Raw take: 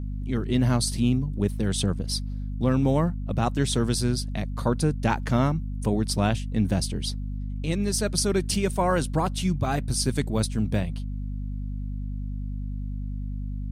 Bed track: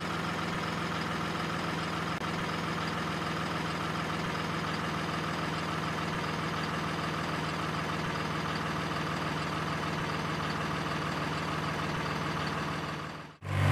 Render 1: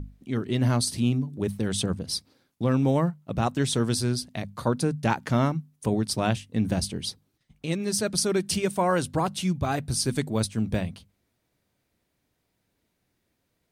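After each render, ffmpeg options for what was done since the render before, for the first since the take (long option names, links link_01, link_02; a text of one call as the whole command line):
ffmpeg -i in.wav -af "bandreject=frequency=50:width_type=h:width=6,bandreject=frequency=100:width_type=h:width=6,bandreject=frequency=150:width_type=h:width=6,bandreject=frequency=200:width_type=h:width=6,bandreject=frequency=250:width_type=h:width=6" out.wav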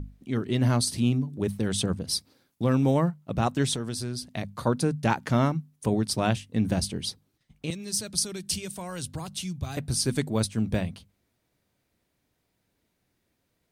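ffmpeg -i in.wav -filter_complex "[0:a]asettb=1/sr,asplit=3[link_01][link_02][link_03];[link_01]atrim=end=2.074[link_04];[link_02]atrim=start=2.07:end=2.94,asetpts=PTS-STARTPTS,afade=type=in:duration=0.004:curve=qsin,afade=type=out:start_time=0.866:duration=0.004:curve=qsin,highshelf=frequency=8600:gain=6[link_05];[link_03]atrim=start=2.936[link_06];[link_04][link_05]acrossfade=duration=0.004:curve1=hsin:curve2=qsin[link_07];[link_07][link_06]acrossfade=duration=0.004:curve1=qsin:curve2=hsin,asettb=1/sr,asplit=3[link_08][link_09][link_10];[link_08]atrim=end=3.754[link_11];[link_09]atrim=start=3.75:end=4.35,asetpts=PTS-STARTPTS,afade=type=in:duration=0.004:curve=qsin,afade=type=out:start_time=0.596:duration=0.004:curve=qsin,acompressor=threshold=-30dB:ratio=3:attack=3.2:release=140:knee=1:detection=peak[link_12];[link_10]atrim=start=4.346[link_13];[link_11][link_12]acrossfade=duration=0.004:curve1=hsin:curve2=qsin[link_14];[link_14][link_13]acrossfade=duration=0.004:curve1=qsin:curve2=hsin,asettb=1/sr,asplit=3[link_15][link_16][link_17];[link_15]atrim=end=7.704[link_18];[link_16]atrim=start=7.7:end=9.77,asetpts=PTS-STARTPTS,afade=type=in:duration=0.004:curve=qsin,afade=type=out:start_time=2.066:duration=0.004:curve=qsin,acrossover=split=130|3000[link_19][link_20][link_21];[link_20]acompressor=threshold=-48dB:ratio=2:attack=3.2:release=140:knee=2.83:detection=peak[link_22];[link_19][link_22][link_21]amix=inputs=3:normalize=0[link_23];[link_17]atrim=start=9.766[link_24];[link_18][link_23]acrossfade=duration=0.004:curve1=hsin:curve2=qsin[link_25];[link_25][link_24]acrossfade=duration=0.004:curve1=qsin:curve2=hsin" out.wav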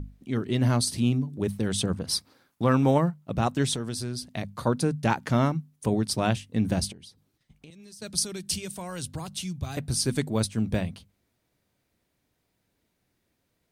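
ffmpeg -i in.wav -filter_complex "[0:a]asettb=1/sr,asplit=3[link_01][link_02][link_03];[link_01]atrim=end=1.944[link_04];[link_02]atrim=start=1.94:end=2.98,asetpts=PTS-STARTPTS,afade=type=in:duration=0.004:curve=qsin,afade=type=out:start_time=1.036:duration=0.004:curve=qsin,equalizer=frequency=1200:width=0.79:gain=8[link_05];[link_03]atrim=start=2.976[link_06];[link_04][link_05]acrossfade=duration=0.004:curve1=hsin:curve2=qsin[link_07];[link_07][link_06]acrossfade=duration=0.004:curve1=qsin:curve2=hsin,asettb=1/sr,asplit=3[link_08][link_09][link_10];[link_08]atrim=end=6.924[link_11];[link_09]atrim=start=6.92:end=8.02,asetpts=PTS-STARTPTS,afade=type=in:duration=0.004:curve=qsin,afade=type=out:start_time=1.096:duration=0.004:curve=qsin,acompressor=threshold=-46dB:ratio=6:attack=3.2:release=140:knee=1:detection=peak[link_12];[link_10]atrim=start=8.016[link_13];[link_11][link_12]acrossfade=duration=0.004:curve1=hsin:curve2=qsin[link_14];[link_14][link_13]acrossfade=duration=0.004:curve1=qsin:curve2=hsin" out.wav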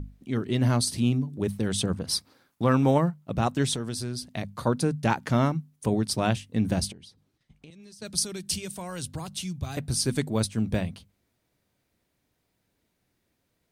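ffmpeg -i in.wav -filter_complex "[0:a]asettb=1/sr,asplit=3[link_01][link_02][link_03];[link_01]atrim=end=6.924[link_04];[link_02]atrim=start=6.92:end=8.05,asetpts=PTS-STARTPTS,afade=type=in:duration=0.004:curve=qsin,afade=type=out:start_time=1.126:duration=0.004:curve=qsin,highshelf=frequency=10000:gain=-10.5[link_05];[link_03]atrim=start=8.046[link_06];[link_04][link_05]acrossfade=duration=0.004:curve1=hsin:curve2=qsin[link_07];[link_07][link_06]acrossfade=duration=0.004:curve1=qsin:curve2=hsin" out.wav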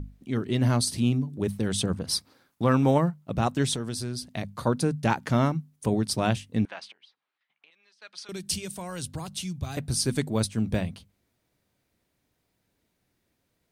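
ffmpeg -i in.wav -filter_complex "[0:a]asettb=1/sr,asplit=3[link_01][link_02][link_03];[link_01]atrim=end=6.654[link_04];[link_02]atrim=start=6.65:end=8.29,asetpts=PTS-STARTPTS,afade=type=in:duration=0.004:curve=qsin,afade=type=out:start_time=1.636:duration=0.004:curve=qsin,asuperpass=centerf=1700:order=4:qfactor=0.76[link_05];[link_03]atrim=start=8.286[link_06];[link_04][link_05]acrossfade=duration=0.004:curve1=hsin:curve2=qsin[link_07];[link_07][link_06]acrossfade=duration=0.004:curve1=qsin:curve2=hsin" out.wav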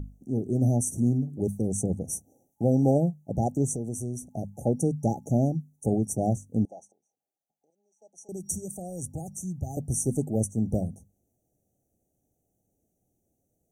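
ffmpeg -i in.wav -af "afftfilt=real='re*(1-between(b*sr/4096,850,5700))':imag='im*(1-between(b*sr/4096,850,5700))':win_size=4096:overlap=0.75,adynamicequalizer=threshold=0.00447:dfrequency=830:dqfactor=2.9:tfrequency=830:tqfactor=2.9:attack=5:release=100:ratio=0.375:range=3:mode=cutabove:tftype=bell" out.wav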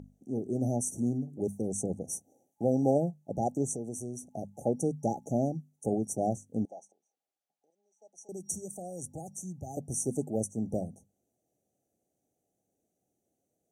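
ffmpeg -i in.wav -af "highpass=frequency=360:poles=1,highshelf=frequency=11000:gain=-11.5" out.wav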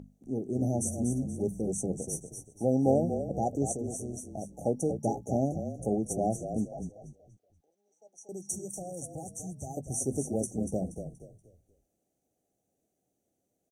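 ffmpeg -i in.wav -filter_complex "[0:a]asplit=2[link_01][link_02];[link_02]adelay=15,volume=-14dB[link_03];[link_01][link_03]amix=inputs=2:normalize=0,asplit=5[link_04][link_05][link_06][link_07][link_08];[link_05]adelay=238,afreqshift=-32,volume=-8dB[link_09];[link_06]adelay=476,afreqshift=-64,volume=-17.6dB[link_10];[link_07]adelay=714,afreqshift=-96,volume=-27.3dB[link_11];[link_08]adelay=952,afreqshift=-128,volume=-36.9dB[link_12];[link_04][link_09][link_10][link_11][link_12]amix=inputs=5:normalize=0" out.wav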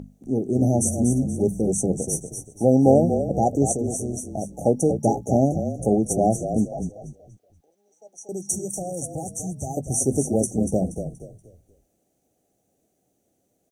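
ffmpeg -i in.wav -af "volume=9.5dB,alimiter=limit=-3dB:level=0:latency=1" out.wav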